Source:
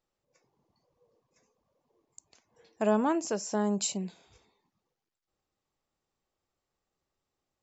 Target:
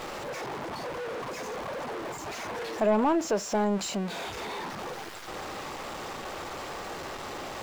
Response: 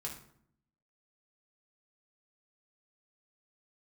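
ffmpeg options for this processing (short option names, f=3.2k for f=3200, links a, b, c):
-filter_complex "[0:a]aeval=exprs='val(0)+0.5*0.02*sgn(val(0))':c=same,asplit=2[a][b];[b]highpass=f=720:p=1,volume=16dB,asoftclip=type=tanh:threshold=-14dB[c];[a][c]amix=inputs=2:normalize=0,lowpass=f=1.3k:p=1,volume=-6dB"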